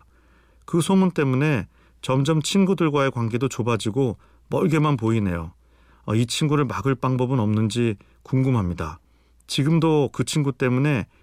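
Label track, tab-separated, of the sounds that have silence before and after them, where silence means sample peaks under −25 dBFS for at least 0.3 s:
0.740000	1.620000	sound
2.040000	4.120000	sound
4.520000	5.450000	sound
6.080000	7.930000	sound
8.330000	8.900000	sound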